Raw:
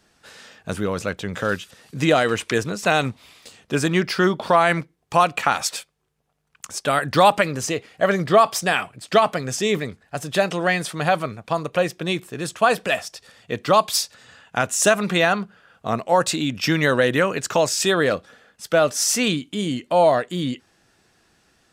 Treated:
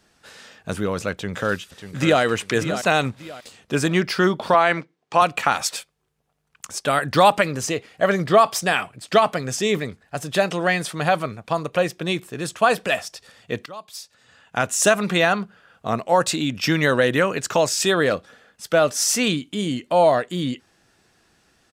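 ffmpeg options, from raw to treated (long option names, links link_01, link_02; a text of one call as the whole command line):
ffmpeg -i in.wav -filter_complex "[0:a]asplit=2[link_01][link_02];[link_02]afade=type=in:start_time=1.12:duration=0.01,afade=type=out:start_time=2.22:duration=0.01,aecho=0:1:590|1180|1770:0.316228|0.0948683|0.0284605[link_03];[link_01][link_03]amix=inputs=2:normalize=0,asettb=1/sr,asplit=3[link_04][link_05][link_06];[link_04]atrim=end=4.544[link_07];[link_05]atrim=start=4.54:end=5.22,asetpts=PTS-STARTPTS,afade=type=in:duration=0.004:curve=qsin,afade=type=out:start_time=0.676:duration=0.004:curve=qsin,highpass=220,lowpass=5600[link_08];[link_06]atrim=start=5.216[link_09];[link_07][link_08]acrossfade=duration=0.004:curve1=hsin:curve2=qsin[link_10];[link_10][link_09]acrossfade=duration=0.004:curve1=qsin:curve2=hsin,asplit=2[link_11][link_12];[link_11]atrim=end=13.66,asetpts=PTS-STARTPTS,afade=type=out:start_time=13.656:duration=0.004:curve=hsin:silence=0.0794328[link_13];[link_12]atrim=start=13.66,asetpts=PTS-STARTPTS,afade=type=in:duration=0.97:curve=qua:silence=0.0794328[link_14];[link_13][link_14]concat=n=2:v=0:a=1" out.wav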